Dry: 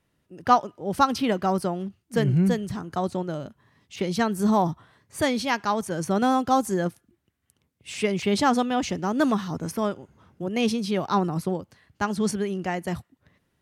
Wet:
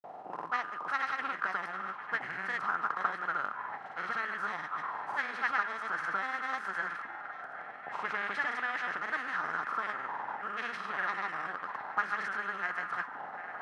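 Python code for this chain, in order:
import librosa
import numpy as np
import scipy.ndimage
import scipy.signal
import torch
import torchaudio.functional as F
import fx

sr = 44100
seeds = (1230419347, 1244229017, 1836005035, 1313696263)

y = fx.bin_compress(x, sr, power=0.4)
y = fx.auto_wah(y, sr, base_hz=660.0, top_hz=1900.0, q=6.0, full_db=-12.5, direction='up')
y = fx.echo_banded(y, sr, ms=769, feedback_pct=83, hz=1700.0, wet_db=-13)
y = fx.granulator(y, sr, seeds[0], grain_ms=100.0, per_s=20.0, spray_ms=100.0, spread_st=0)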